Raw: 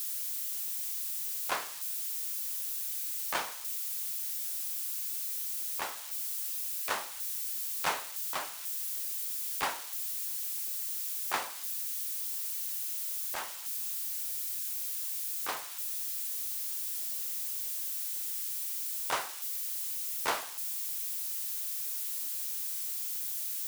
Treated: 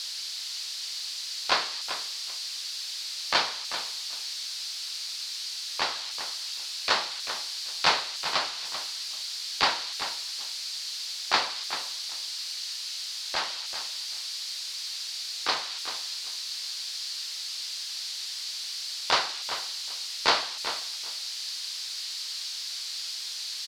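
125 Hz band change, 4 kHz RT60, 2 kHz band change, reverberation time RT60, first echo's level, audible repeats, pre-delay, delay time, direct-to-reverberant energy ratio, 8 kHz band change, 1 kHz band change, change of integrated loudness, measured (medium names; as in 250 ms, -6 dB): no reading, no reverb, +8.5 dB, no reverb, -10.5 dB, 2, no reverb, 389 ms, no reverb, +0.5 dB, +7.5 dB, +3.0 dB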